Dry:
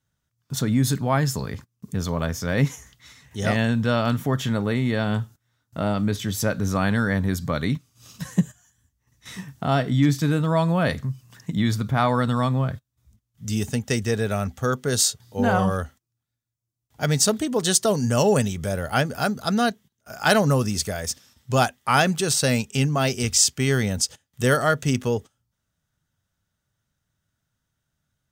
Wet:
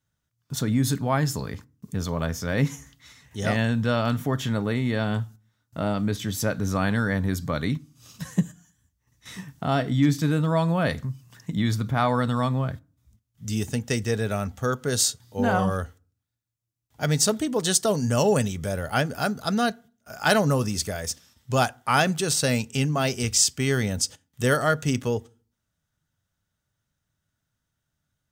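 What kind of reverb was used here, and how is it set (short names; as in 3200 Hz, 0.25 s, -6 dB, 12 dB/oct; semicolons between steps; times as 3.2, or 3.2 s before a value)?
FDN reverb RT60 0.39 s, low-frequency decay 1.45×, high-frequency decay 0.65×, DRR 19.5 dB; gain -2 dB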